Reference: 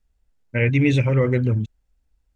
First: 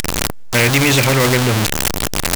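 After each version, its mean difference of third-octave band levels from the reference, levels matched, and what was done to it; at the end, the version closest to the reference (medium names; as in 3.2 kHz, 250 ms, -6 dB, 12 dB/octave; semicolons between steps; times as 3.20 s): 16.5 dB: jump at every zero crossing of -25.5 dBFS; in parallel at +2 dB: peak limiter -12.5 dBFS, peak gain reduction 6.5 dB; on the sum: spectrum-flattening compressor 2:1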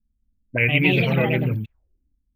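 6.5 dB: ever faster or slower copies 249 ms, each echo +4 st, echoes 2; careless resampling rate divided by 3×, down none, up zero stuff; touch-sensitive low-pass 220–2500 Hz up, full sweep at -14.5 dBFS; trim -4.5 dB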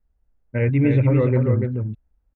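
4.0 dB: low-pass 1.4 kHz 12 dB/octave; on a send: delay 290 ms -5 dB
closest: third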